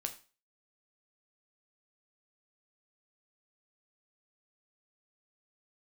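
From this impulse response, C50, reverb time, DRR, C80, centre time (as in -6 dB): 13.5 dB, 0.35 s, 5.5 dB, 18.0 dB, 9 ms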